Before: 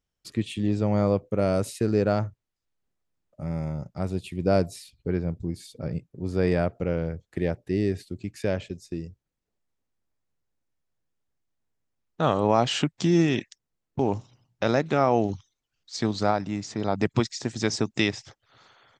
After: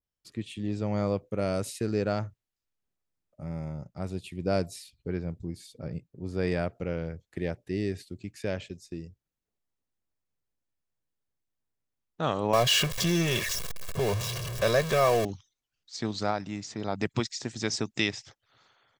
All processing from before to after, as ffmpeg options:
ffmpeg -i in.wav -filter_complex "[0:a]asettb=1/sr,asplit=3[link_01][link_02][link_03];[link_01]atrim=end=12.534[link_04];[link_02]atrim=start=12.53:end=15.25,asetpts=PTS-STARTPTS,afade=type=in:duration=0.004:curve=qsin,afade=type=out:start_time=2.716:duration=0.004:curve=qsin,aeval=exprs='val(0)+0.5*0.0531*sgn(val(0))':channel_layout=same,aecho=1:1:1.8:0.86,atrim=end_sample=119952[link_05];[link_03]atrim=start=15.246[link_06];[link_04][link_05]acrossfade=duration=0.004:curve1=hsin:curve2=qsin[link_07];[link_07][link_06]acrossfade=duration=0.004:curve1=qsin:curve2=hsin,dynaudnorm=framelen=150:gausssize=9:maxgain=3dB,adynamicequalizer=threshold=0.02:dfrequency=1500:dqfactor=0.7:tfrequency=1500:tqfactor=0.7:attack=5:release=100:ratio=0.375:range=2.5:mode=boostabove:tftype=highshelf,volume=-8.5dB" out.wav

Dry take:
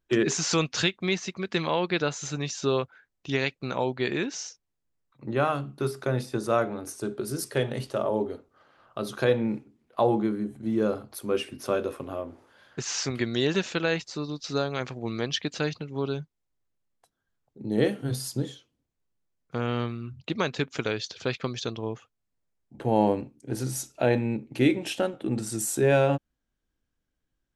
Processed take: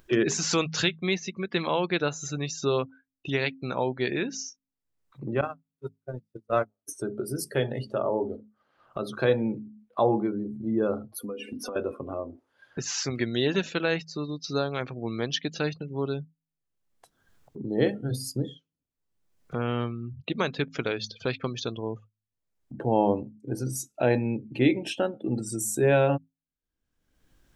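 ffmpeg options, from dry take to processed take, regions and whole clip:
ffmpeg -i in.wav -filter_complex "[0:a]asettb=1/sr,asplit=3[link_01][link_02][link_03];[link_01]atrim=end=5.414[link_04];[link_02]atrim=start=5.41:end=6.88,asetpts=PTS-STARTPTS,afade=type=in:duration=0.004:curve=qsin,afade=type=out:start_time=1.466:duration=0.004:curve=qsin,aeval=exprs='val(0)+0.5*0.0266*sgn(val(0))':channel_layout=same,agate=range=-46dB:threshold=-22dB:ratio=16:release=100:detection=peak[link_05];[link_03]atrim=start=6.876[link_06];[link_04][link_05]acrossfade=duration=0.004:curve1=hsin:curve2=qsin[link_07];[link_07][link_06]acrossfade=duration=0.004:curve1=qsin:curve2=hsin,asettb=1/sr,asplit=3[link_08][link_09][link_10];[link_08]atrim=end=11.184[link_11];[link_09]atrim=start=11.18:end=11.76,asetpts=PTS-STARTPTS,afade=type=in:duration=0.004:curve=qsin,afade=type=out:start_time=0.576:duration=0.004:curve=qsin,highpass=88,aecho=1:1:4.1:0.76,atrim=end_sample=25578,acompressor=threshold=-33dB:ratio=12:attack=3.2:release=140:knee=1:detection=peak[link_12];[link_10]atrim=start=11.756[link_13];[link_11][link_12]acrossfade=duration=0.004:curve1=hsin:curve2=qsin[link_14];[link_14][link_13]acrossfade=duration=0.004:curve1=qsin:curve2=hsin,bandreject=frequency=53.33:width_type=h:width=4,bandreject=frequency=106.66:width_type=h:width=4,bandreject=frequency=159.99:width_type=h:width=4,bandreject=frequency=213.32:width_type=h:width=4,bandreject=frequency=266.65:width_type=h:width=4,afftdn=noise_reduction=23:noise_floor=-41,acompressor=mode=upward:threshold=-30dB:ratio=2.5" out.wav

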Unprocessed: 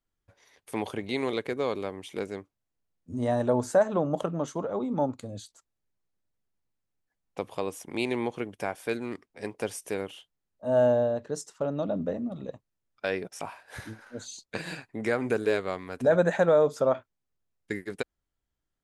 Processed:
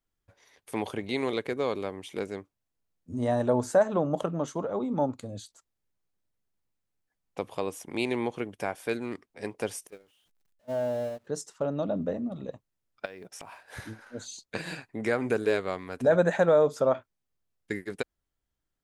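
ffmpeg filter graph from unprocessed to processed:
ffmpeg -i in.wav -filter_complex "[0:a]asettb=1/sr,asplit=3[link_01][link_02][link_03];[link_01]atrim=end=9.874[link_04];[link_02]atrim=start=9.87:end=11.27,asetpts=PTS-STARTPTS,afade=type=in:duration=0.004:curve=qsin,afade=type=out:start_time=1.396:duration=0.004:curve=qsin,aeval=exprs='val(0)+0.5*0.02*sgn(val(0))':channel_layout=same,agate=range=-31dB:threshold=-26dB:ratio=16:release=100:detection=peak,acompressor=threshold=-42dB:ratio=1.5:attack=3.2:release=140:knee=1:detection=peak[link_05];[link_03]atrim=start=11.266[link_06];[link_04][link_05]acrossfade=duration=0.004:curve1=hsin:curve2=qsin[link_07];[link_07][link_06]acrossfade=duration=0.004:curve1=qsin:curve2=hsin,asettb=1/sr,asplit=3[link_08][link_09][link_10];[link_08]atrim=end=13.054[link_11];[link_09]atrim=start=13.05:end=13.77,asetpts=PTS-STARTPTS,afade=type=in:duration=0.004:curve=qsin,afade=type=out:start_time=0.716:duration=0.004:curve=qsin,acompressor=threshold=-39dB:ratio=16:attack=3.2:release=140:knee=1:detection=peak,acrusher=bits=8:mode=log:mix=0:aa=0.000001[link_12];[link_10]atrim=start=13.766[link_13];[link_11][link_12]acrossfade=duration=0.004:curve1=hsin:curve2=qsin[link_14];[link_14][link_13]acrossfade=duration=0.004:curve1=qsin:curve2=hsin" out.wav

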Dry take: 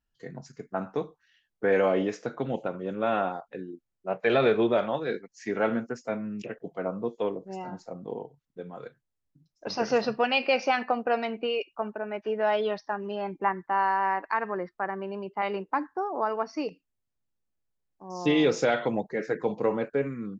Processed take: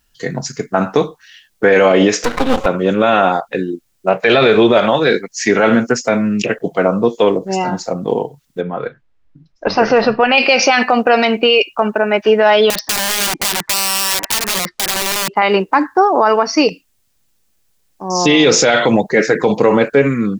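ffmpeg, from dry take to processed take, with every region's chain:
ffmpeg -i in.wav -filter_complex "[0:a]asettb=1/sr,asplit=3[link_01][link_02][link_03];[link_01]atrim=end=2.244[link_04];[link_02]atrim=start=2.24:end=2.66,asetpts=PTS-STARTPTS,afade=type=in:duration=0.004:curve=qsin,afade=type=out:start_time=0.416:duration=0.004:curve=qsin,aecho=1:1:3.9:0.9,atrim=end_sample=18522,acompressor=mode=upward:threshold=-29dB:ratio=2.5:attack=3.2:release=140:knee=2.83:detection=peak,aeval=exprs='max(val(0),0)':channel_layout=same[link_05];[link_03]atrim=start=2.656[link_06];[link_04][link_05]acrossfade=duration=0.004:curve1=hsin:curve2=qsin[link_07];[link_07][link_06]acrossfade=duration=0.004:curve1=qsin:curve2=hsin,asettb=1/sr,asplit=3[link_08][link_09][link_10];[link_08]atrim=end=8.614[link_11];[link_09]atrim=start=8.61:end=10.38,asetpts=PTS-STARTPTS,afade=type=in:duration=0.004:curve=qsin,afade=type=out:start_time=1.766:duration=0.004:curve=qsin,lowpass=2000,asubboost=boost=10.5:cutoff=59[link_12];[link_10]atrim=start=10.376[link_13];[link_11][link_12]acrossfade=duration=0.004:curve1=hsin:curve2=qsin[link_14];[link_14][link_13]acrossfade=duration=0.004:curve1=qsin:curve2=hsin,asettb=1/sr,asplit=3[link_15][link_16][link_17];[link_15]atrim=end=12.704[link_18];[link_16]atrim=start=12.7:end=15.36,asetpts=PTS-STARTPTS,afade=type=in:duration=0.004:curve=qsin,afade=type=out:start_time=2.656:duration=0.004:curve=qsin,lowpass=5800,acompressor=threshold=-32dB:ratio=12:attack=3.2:release=140:knee=1:detection=peak,aeval=exprs='(mod(59.6*val(0)+1,2)-1)/59.6':channel_layout=same[link_19];[link_17]atrim=start=15.356[link_20];[link_18][link_19]acrossfade=duration=0.004:curve1=hsin:curve2=qsin[link_21];[link_21][link_20]acrossfade=duration=0.004:curve1=qsin:curve2=hsin,highshelf=frequency=2300:gain=10.5,alimiter=level_in=19.5dB:limit=-1dB:release=50:level=0:latency=1,volume=-1dB" out.wav

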